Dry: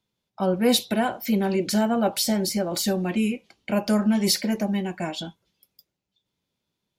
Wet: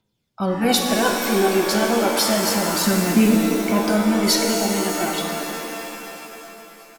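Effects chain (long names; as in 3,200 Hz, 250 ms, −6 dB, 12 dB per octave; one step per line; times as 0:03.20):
phase shifter 0.31 Hz, delay 3 ms, feedback 56%
repeating echo 625 ms, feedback 56%, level −24 dB
reverb with rising layers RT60 2.9 s, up +7 semitones, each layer −2 dB, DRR 2.5 dB
level +1.5 dB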